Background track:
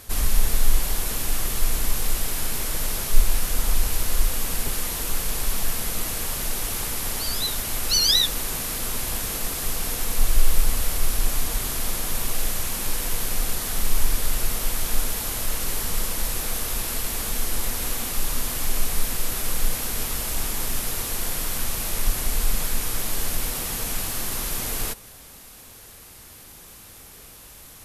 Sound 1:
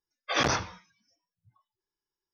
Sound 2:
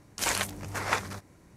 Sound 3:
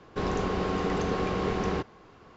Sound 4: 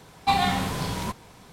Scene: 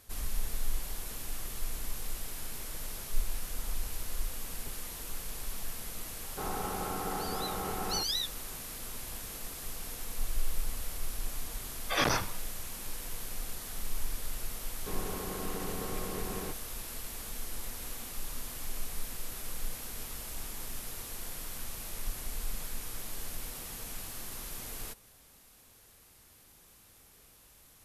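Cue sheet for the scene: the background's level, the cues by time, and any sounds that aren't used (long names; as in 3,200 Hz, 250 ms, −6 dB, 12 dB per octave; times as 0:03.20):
background track −14 dB
0:06.21: mix in 3 −11.5 dB + hollow resonant body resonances 830/1,300 Hz, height 14 dB, ringing for 25 ms
0:11.61: mix in 1 −2.5 dB
0:14.70: mix in 3 −11 dB
not used: 2, 4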